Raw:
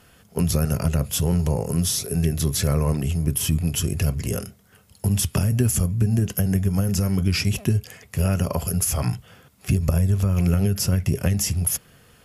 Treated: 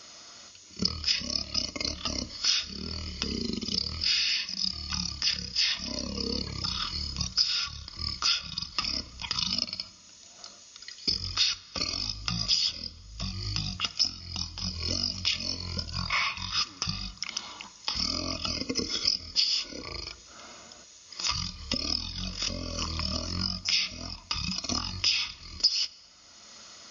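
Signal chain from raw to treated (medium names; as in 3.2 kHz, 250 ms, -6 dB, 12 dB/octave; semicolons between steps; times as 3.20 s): RIAA curve recording; compression 4:1, threshold -26 dBFS, peak gain reduction 18.5 dB; wide varispeed 0.455×; comb of notches 790 Hz; on a send: reverberation RT60 3.0 s, pre-delay 47 ms, DRR 18.5 dB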